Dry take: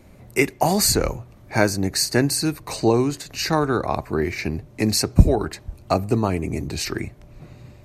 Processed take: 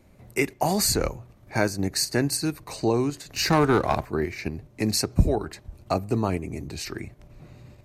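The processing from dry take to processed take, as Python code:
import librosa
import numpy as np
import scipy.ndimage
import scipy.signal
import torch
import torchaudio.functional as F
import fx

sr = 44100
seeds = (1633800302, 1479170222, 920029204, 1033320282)

p1 = fx.level_steps(x, sr, step_db=23)
p2 = x + F.gain(torch.from_numpy(p1), -1.0).numpy()
p3 = fx.leveller(p2, sr, passes=2, at=(3.36, 4.06))
y = F.gain(torch.from_numpy(p3), -8.0).numpy()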